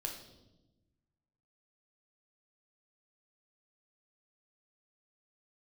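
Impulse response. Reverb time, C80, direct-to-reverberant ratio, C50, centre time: 1.0 s, 9.5 dB, 1.0 dB, 6.5 dB, 27 ms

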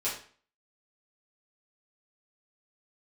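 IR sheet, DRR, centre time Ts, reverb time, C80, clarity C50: -9.5 dB, 33 ms, 0.45 s, 10.5 dB, 5.5 dB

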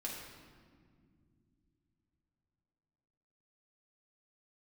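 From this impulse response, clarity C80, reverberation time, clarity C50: 3.5 dB, not exponential, 1.5 dB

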